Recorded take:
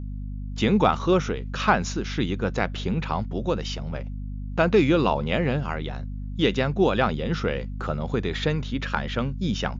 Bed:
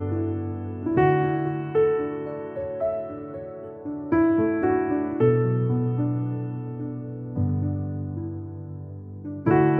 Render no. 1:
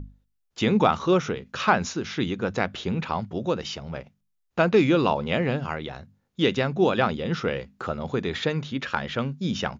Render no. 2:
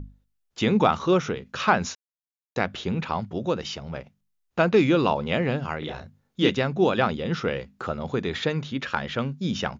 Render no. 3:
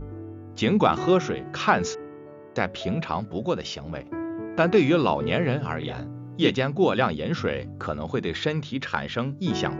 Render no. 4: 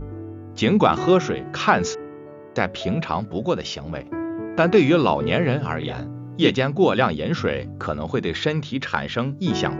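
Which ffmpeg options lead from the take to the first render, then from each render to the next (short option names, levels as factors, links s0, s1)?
-af "bandreject=f=50:t=h:w=6,bandreject=f=100:t=h:w=6,bandreject=f=150:t=h:w=6,bandreject=f=200:t=h:w=6,bandreject=f=250:t=h:w=6"
-filter_complex "[0:a]asettb=1/sr,asplit=3[s0][s1][s2];[s0]atrim=end=5.794[s3];[s1]atrim=start=5.79:end=6.5,asetpts=PTS-STARTPTS,afade=t=in:d=0.004:c=qsin,afade=t=out:st=0.706:d=0.004:c=qsin,asplit=2[s4][s5];[s5]adelay=33,volume=0.794[s6];[s4][s6]amix=inputs=2:normalize=0,atrim=end_sample=31311[s7];[s2]atrim=start=6.496[s8];[s3][s7]acrossfade=d=0.004:c1=hsin:c2=qsin[s9];[s9][s8]acrossfade=d=0.004:c1=qsin:c2=hsin,asplit=3[s10][s11][s12];[s10]atrim=end=1.95,asetpts=PTS-STARTPTS,afade=t=out:st=1.946:d=0.004:c=hsin[s13];[s11]atrim=start=1.95:end=2.56,asetpts=PTS-STARTPTS,volume=0[s14];[s12]atrim=start=2.56,asetpts=PTS-STARTPTS,afade=t=in:d=0.004:c=hsin[s15];[s13][s14][s15]concat=n=3:v=0:a=1"
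-filter_complex "[1:a]volume=0.251[s0];[0:a][s0]amix=inputs=2:normalize=0"
-af "volume=1.5,alimiter=limit=0.708:level=0:latency=1"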